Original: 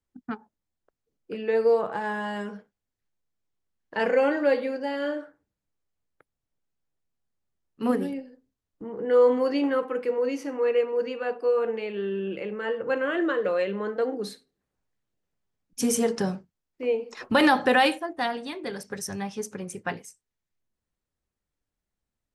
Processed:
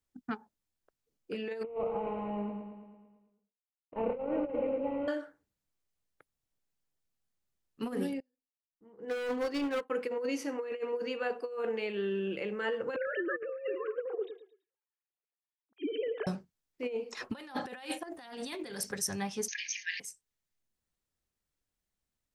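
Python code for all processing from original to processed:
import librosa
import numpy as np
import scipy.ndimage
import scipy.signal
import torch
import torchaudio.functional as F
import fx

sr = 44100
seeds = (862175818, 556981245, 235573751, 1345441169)

y = fx.chain(x, sr, fx.cvsd(bps=16000),
    fx.moving_average(points=26),
    fx.echo_feedback(ms=111, feedback_pct=60, wet_db=-7.5), at=(1.63, 5.08))
y = fx.chain(y, sr, fx.clip_hard(threshold_db=-23.0),
    fx.upward_expand(threshold_db=-44.0, expansion=2.5), at=(8.2, 9.9))
y = fx.chain(y, sr, fx.sine_speech(),
    fx.echo_feedback(ms=110, feedback_pct=31, wet_db=-13.0), at=(12.96, 16.27))
y = fx.chain(y, sr, fx.high_shelf(hz=5500.0, db=6.0),
    fx.over_compress(threshold_db=-40.0, ratio=-1.0), at=(18.03, 18.93))
y = fx.chain(y, sr, fx.brickwall_bandpass(low_hz=1600.0, high_hz=6700.0),
    fx.env_flatten(amount_pct=70), at=(19.48, 20.0))
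y = fx.high_shelf(y, sr, hz=2200.0, db=6.0)
y = fx.over_compress(y, sr, threshold_db=-26.0, ratio=-0.5)
y = y * librosa.db_to_amplitude(-6.5)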